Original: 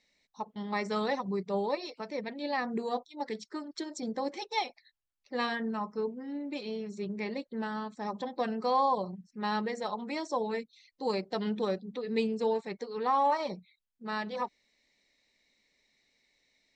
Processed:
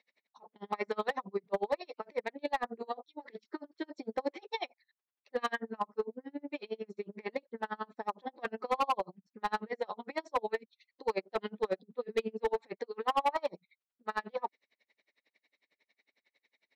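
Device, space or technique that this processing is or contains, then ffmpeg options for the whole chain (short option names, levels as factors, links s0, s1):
helicopter radio: -af "highpass=370,lowpass=2900,aeval=exprs='val(0)*pow(10,-36*(0.5-0.5*cos(2*PI*11*n/s))/20)':c=same,asoftclip=type=hard:threshold=0.0335,volume=2.11"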